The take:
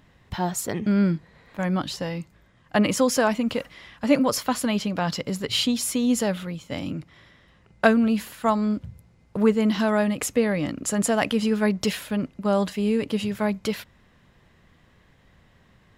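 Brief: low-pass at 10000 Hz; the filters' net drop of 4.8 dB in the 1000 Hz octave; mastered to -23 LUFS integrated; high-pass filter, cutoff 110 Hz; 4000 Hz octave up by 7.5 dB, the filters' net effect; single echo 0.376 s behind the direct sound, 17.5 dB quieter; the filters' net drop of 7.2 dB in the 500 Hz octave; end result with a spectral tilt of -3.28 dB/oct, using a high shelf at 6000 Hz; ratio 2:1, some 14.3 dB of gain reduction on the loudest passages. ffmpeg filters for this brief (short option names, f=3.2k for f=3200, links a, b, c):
-af "highpass=110,lowpass=10k,equalizer=f=500:t=o:g=-8,equalizer=f=1k:t=o:g=-4,equalizer=f=4k:t=o:g=8,highshelf=f=6k:g=6.5,acompressor=threshold=-40dB:ratio=2,aecho=1:1:376:0.133,volume=12dB"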